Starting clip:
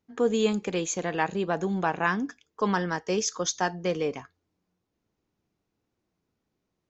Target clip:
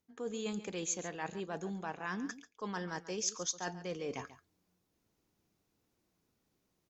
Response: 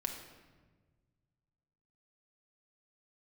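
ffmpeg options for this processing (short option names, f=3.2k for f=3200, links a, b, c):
-af "areverse,acompressor=threshold=-38dB:ratio=5,areverse,aemphasis=mode=production:type=cd,aecho=1:1:138:0.178"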